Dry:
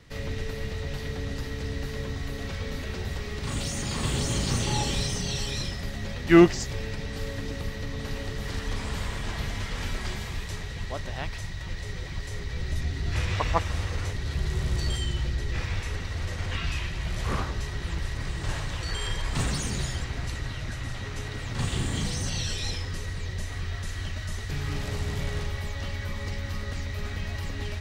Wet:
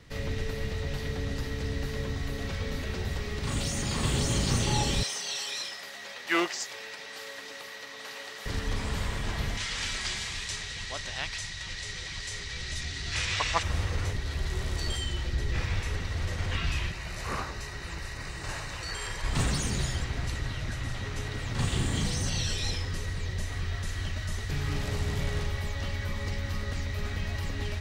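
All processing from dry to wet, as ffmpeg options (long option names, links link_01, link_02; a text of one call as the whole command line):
ffmpeg -i in.wav -filter_complex "[0:a]asettb=1/sr,asplit=3[link_01][link_02][link_03];[link_01]atrim=end=5.034[link_04];[link_02]atrim=start=5.03:end=8.46,asetpts=PTS-STARTPTS,afade=type=in:duration=0.004:curve=qsin,afade=type=out:start_time=3.426:duration=0.004:curve=qsin,aeval=exprs='clip(val(0),-1,0.224)':channel_layout=same,highpass=740[link_05];[link_03]atrim=start=8.456[link_06];[link_04][link_05]acrossfade=duration=0.004:curve1=hsin:curve2=qsin[link_07];[link_07][link_06]acrossfade=duration=0.004:curve1=qsin:curve2=hsin,asettb=1/sr,asplit=3[link_08][link_09][link_10];[link_08]atrim=end=9.574[link_11];[link_09]atrim=start=9.57:end=13.63,asetpts=PTS-STARTPTS,afade=type=in:duration=0.004:curve=qsin,afade=type=out:start_time=4.056:duration=0.004:curve=qsin,lowpass=frequency=9100:width=0.5412,lowpass=frequency=9100:width=1.3066,tiltshelf=frequency=1300:gain=-9[link_12];[link_10]atrim=start=13.626[link_13];[link_11][link_12]acrossfade=duration=0.004:curve1=hsin:curve2=qsin[link_14];[link_14][link_13]acrossfade=duration=0.004:curve1=qsin:curve2=hsin,asettb=1/sr,asplit=3[link_15][link_16][link_17];[link_15]atrim=end=14.204[link_18];[link_16]atrim=start=14.2:end=15.34,asetpts=PTS-STARTPTS,afade=type=in:duration=0.004:curve=qsin,afade=type=out:start_time=1.136:duration=0.004:curve=qsin,equalizer=frequency=140:width=1.3:gain=-8,bandreject=frequency=60:width_type=h:width=6,bandreject=frequency=120:width_type=h:width=6,bandreject=frequency=180:width_type=h:width=6,bandreject=frequency=240:width_type=h:width=6,bandreject=frequency=300:width_type=h:width=6,bandreject=frequency=360:width_type=h:width=6,bandreject=frequency=420:width_type=h:width=6,bandreject=frequency=480:width_type=h:width=6,bandreject=frequency=540:width_type=h:width=6[link_19];[link_17]atrim=start=15.336[link_20];[link_18][link_19]acrossfade=duration=0.004:curve1=hsin:curve2=qsin[link_21];[link_21][link_20]acrossfade=duration=0.004:curve1=qsin:curve2=hsin,asettb=1/sr,asplit=3[link_22][link_23][link_24];[link_22]atrim=end=16.924[link_25];[link_23]atrim=start=16.92:end=19.24,asetpts=PTS-STARTPTS,afade=type=in:duration=0.004:curve=qsin,afade=type=out:start_time=2.316:duration=0.004:curve=qsin,lowshelf=frequency=380:gain=-9,bandreject=frequency=3300:width=5.6[link_26];[link_24]atrim=start=19.236[link_27];[link_25][link_26]acrossfade=duration=0.004:curve1=hsin:curve2=qsin[link_28];[link_28][link_27]acrossfade=duration=0.004:curve1=qsin:curve2=hsin" out.wav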